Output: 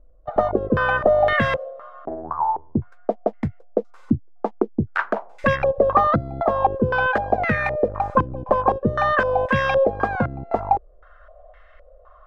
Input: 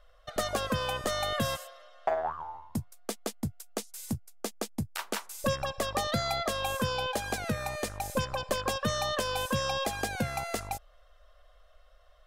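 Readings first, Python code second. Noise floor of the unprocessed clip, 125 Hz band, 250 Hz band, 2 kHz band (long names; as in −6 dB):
−59 dBFS, +9.0 dB, +11.0 dB, +12.5 dB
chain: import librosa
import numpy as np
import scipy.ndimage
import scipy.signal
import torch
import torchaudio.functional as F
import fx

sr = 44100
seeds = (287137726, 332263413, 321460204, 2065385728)

y = fx.filter_held_lowpass(x, sr, hz=3.9, low_hz=300.0, high_hz=2000.0)
y = y * 10.0 ** (8.5 / 20.0)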